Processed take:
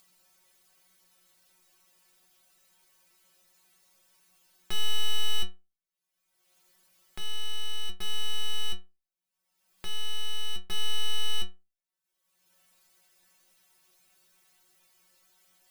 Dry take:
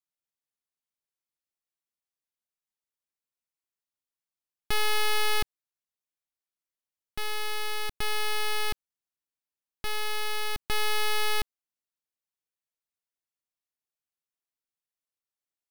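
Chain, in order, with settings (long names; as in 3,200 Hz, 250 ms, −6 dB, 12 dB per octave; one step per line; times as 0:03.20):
stiff-string resonator 180 Hz, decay 0.27 s, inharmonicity 0.002
upward compression, threshold −47 dBFS
level +7 dB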